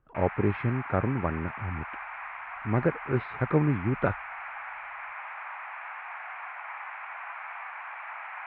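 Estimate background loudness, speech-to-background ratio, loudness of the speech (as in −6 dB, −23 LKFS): −38.5 LKFS, 9.5 dB, −29.0 LKFS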